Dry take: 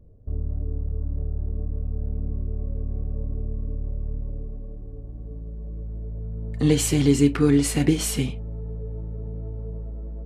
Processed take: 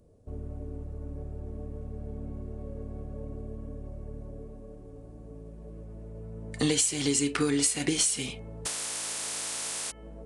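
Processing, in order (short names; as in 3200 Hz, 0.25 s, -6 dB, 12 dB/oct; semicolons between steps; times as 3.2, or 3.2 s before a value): 8.65–9.9 spectral contrast lowered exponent 0.2; RIAA curve recording; de-hum 435.9 Hz, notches 7; compressor 16:1, threshold -26 dBFS, peak gain reduction 17 dB; downsampling 22050 Hz; gain +4 dB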